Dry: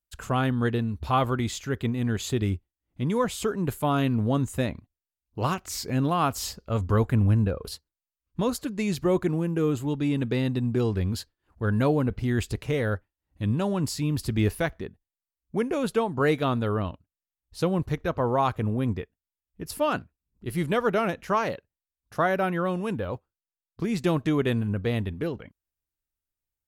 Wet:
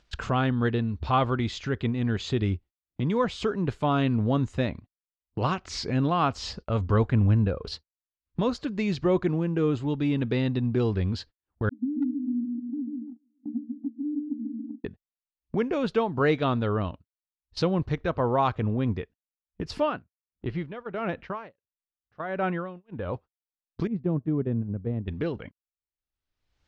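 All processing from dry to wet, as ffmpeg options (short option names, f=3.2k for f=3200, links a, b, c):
-filter_complex "[0:a]asettb=1/sr,asplit=3[a][b][c];[a]atrim=end=11.694[d];[b]atrim=start=11.69:end=14.85,asetpts=PTS-STARTPTS,afade=t=in:d=0.004:c=qsin,afade=t=out:st=3.156:d=0.004:c=qsin,asuperpass=centerf=260:order=20:qfactor=3.4,aecho=1:1:141|282|423|564|705|846:0.562|0.253|0.114|0.0512|0.0231|0.0104,atrim=end_sample=139356,asoftclip=type=hard:threshold=-20dB[e];[c]atrim=start=14.846[f];[d][e]acrossfade=d=0.004:c1=hsin:c2=qsin[g];[g][f]acrossfade=d=0.004:c1=qsin:c2=hsin,asettb=1/sr,asplit=3[h][i][j];[h]atrim=end=19.824[k];[i]atrim=start=19.82:end=23.14,asetpts=PTS-STARTPTS,afade=t=in:d=0.004:c=qsin,afade=t=out:st=3.316:d=0.004:c=qsin,lowpass=3.1k,aeval=exprs='val(0)*pow(10,-21*(0.5-0.5*cos(2*PI*1.5*n/s))/20)':c=same[l];[j]atrim=start=23.136[m];[k][l]acrossfade=d=0.004:c1=hsin:c2=qsin[n];[n][m]acrossfade=d=0.004:c1=qsin:c2=hsin,asettb=1/sr,asplit=3[o][p][q];[o]atrim=end=23.874[r];[p]atrim=start=23.87:end=25.08,asetpts=PTS-STARTPTS,afade=t=in:d=0.004:c=qsin,afade=t=out:st=1.206:d=0.004:c=qsin,agate=range=-7dB:threshold=-27dB:ratio=16:release=100:detection=peak,bandpass=f=160:t=q:w=0.66,aemphasis=mode=reproduction:type=75kf[s];[q]atrim=start=25.076[t];[r][s]acrossfade=d=0.004:c1=hsin:c2=qsin[u];[u][t]acrossfade=d=0.004:c1=qsin:c2=hsin,agate=range=-32dB:threshold=-44dB:ratio=16:detection=peak,lowpass=f=5.1k:w=0.5412,lowpass=f=5.1k:w=1.3066,acompressor=mode=upward:threshold=-26dB:ratio=2.5"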